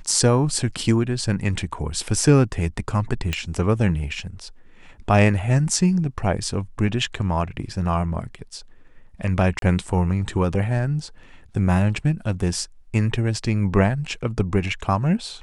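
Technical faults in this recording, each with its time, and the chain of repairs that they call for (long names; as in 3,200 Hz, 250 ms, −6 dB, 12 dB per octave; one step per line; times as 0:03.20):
0:03.33: click −11 dBFS
0:09.59–0:09.62: drop-out 32 ms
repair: click removal
repair the gap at 0:09.59, 32 ms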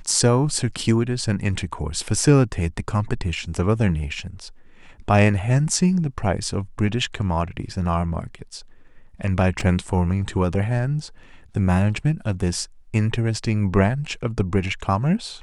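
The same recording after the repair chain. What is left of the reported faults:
none of them is left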